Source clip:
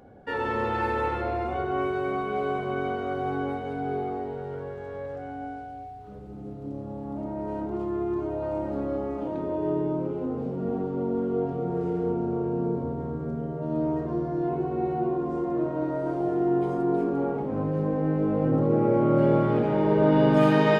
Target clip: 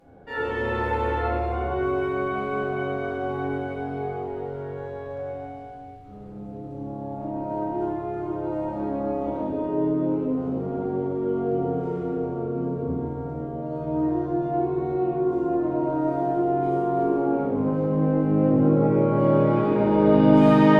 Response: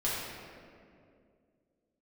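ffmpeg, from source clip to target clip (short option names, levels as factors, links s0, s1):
-filter_complex "[1:a]atrim=start_sample=2205,afade=t=out:st=0.26:d=0.01,atrim=end_sample=11907,asetrate=29988,aresample=44100[s0];[0:a][s0]afir=irnorm=-1:irlink=0,volume=0.398"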